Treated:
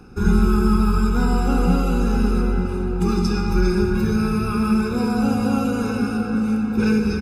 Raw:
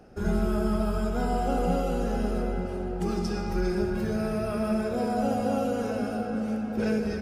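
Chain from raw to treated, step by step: comb 0.8 ms, depth 97%; trim +5 dB

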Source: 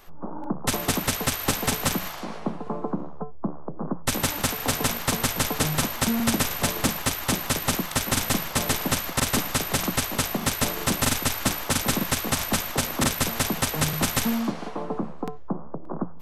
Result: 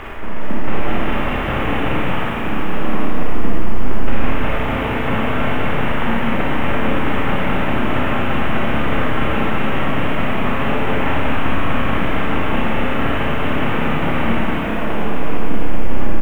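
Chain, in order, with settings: one-bit delta coder 16 kbps, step -23 dBFS; distance through air 240 m; frequency-shifting echo 415 ms, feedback 61%, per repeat +32 Hz, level -7 dB; bit crusher 9-bit; Schroeder reverb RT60 2.5 s, combs from 28 ms, DRR -6.5 dB; trim -1 dB

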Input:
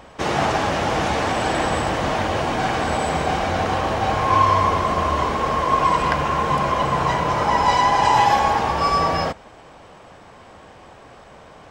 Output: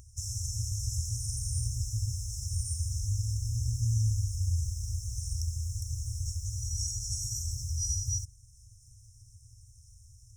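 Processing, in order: FFT band-reject 110–4600 Hz; upward compressor, threshold -50 dBFS; wide varispeed 1.13×

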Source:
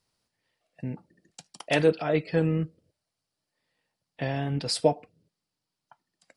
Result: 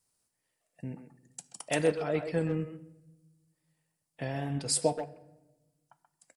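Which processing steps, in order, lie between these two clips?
resonant high shelf 5.9 kHz +10.5 dB, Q 1.5; speakerphone echo 130 ms, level -7 dB; wow and flutter 24 cents; on a send at -17 dB: reverberation RT60 1.1 s, pre-delay 10 ms; on the sum: trim -5.5 dB

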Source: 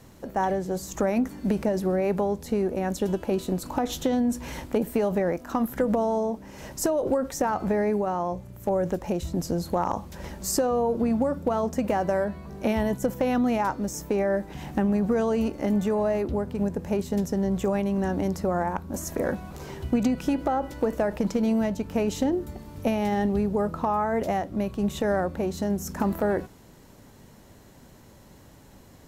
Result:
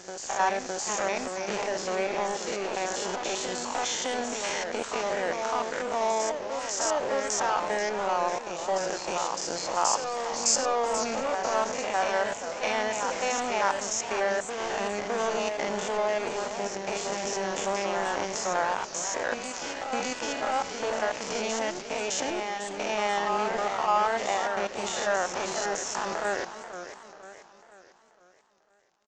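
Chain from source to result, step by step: spectrogram pixelated in time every 100 ms; high-pass 800 Hz 12 dB/octave; treble shelf 5.6 kHz +10 dB; band-stop 3.9 kHz, Q 9.1; in parallel at -2.5 dB: compressor with a negative ratio -41 dBFS, ratio -1; on the sum: crossover distortion -40 dBFS; resampled via 16 kHz; on a send: reverse echo 610 ms -5.5 dB; on the sum: modulated delay 491 ms, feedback 46%, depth 218 cents, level -11 dB; trim +6 dB

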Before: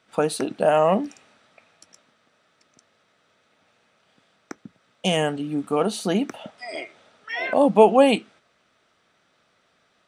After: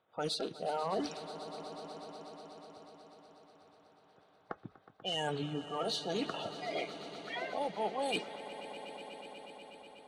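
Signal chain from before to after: coarse spectral quantiser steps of 30 dB; level-controlled noise filter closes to 1.1 kHz, open at -15.5 dBFS; graphic EQ 125/250/2000/4000 Hz -4/-9/-6/+9 dB; reverse; compression 8:1, threshold -34 dBFS, peak gain reduction 22.5 dB; reverse; Chebyshev shaper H 5 -26 dB, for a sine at -22 dBFS; on a send: echo with a slow build-up 122 ms, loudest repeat 5, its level -17 dB

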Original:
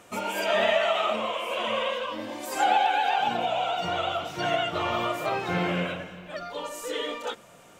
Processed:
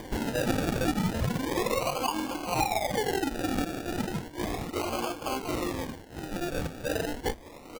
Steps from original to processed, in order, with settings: median filter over 9 samples; reverb removal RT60 1 s; hum notches 60/120/180 Hz; comb 3.8 ms, depth 48%; feedback delay 908 ms, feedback 24%, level -18 dB; upward compressor, threshold -37 dBFS; 3.65–6.10 s: peaking EQ 940 Hz -9.5 dB 2.4 oct; companded quantiser 4-bit; static phaser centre 610 Hz, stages 6; compression 10:1, threshold -33 dBFS, peak gain reduction 14.5 dB; dynamic bell 1.6 kHz, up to +5 dB, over -51 dBFS, Q 1; decimation with a swept rate 33×, swing 60% 0.34 Hz; trim +6.5 dB

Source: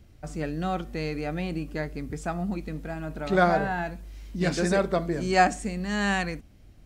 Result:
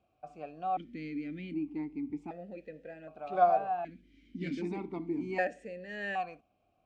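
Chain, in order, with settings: bass shelf 380 Hz +5.5 dB; stepped vowel filter 1.3 Hz

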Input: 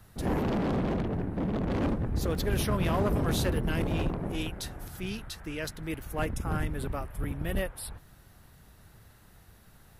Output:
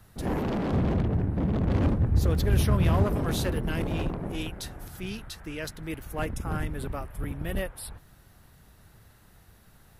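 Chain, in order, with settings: 0.73–3.04 s: peaking EQ 84 Hz +10.5 dB 1.6 oct

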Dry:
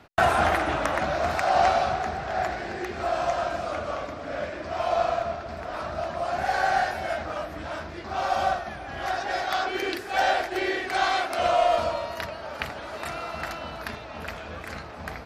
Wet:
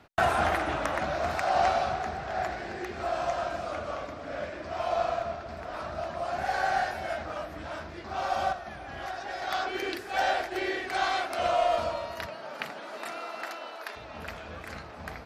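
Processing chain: 8.52–9.42 s: compression 2.5:1, threshold -31 dBFS, peak gain reduction 6 dB; 12.26–13.95 s: high-pass 120 Hz -> 400 Hz 24 dB/octave; trim -4 dB

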